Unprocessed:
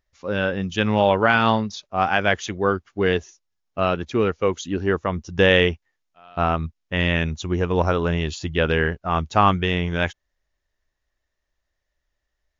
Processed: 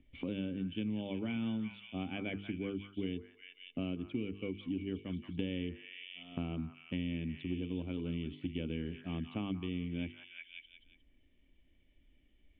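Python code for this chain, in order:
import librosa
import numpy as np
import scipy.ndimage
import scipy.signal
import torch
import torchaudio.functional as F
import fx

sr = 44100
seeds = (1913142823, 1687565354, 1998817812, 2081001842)

y = fx.formant_cascade(x, sr, vowel='i')
y = fx.hum_notches(y, sr, base_hz=50, count=9)
y = fx.echo_stepped(y, sr, ms=179, hz=1300.0, octaves=0.7, feedback_pct=70, wet_db=-6.0)
y = fx.band_squash(y, sr, depth_pct=100)
y = y * 10.0 ** (-5.5 / 20.0)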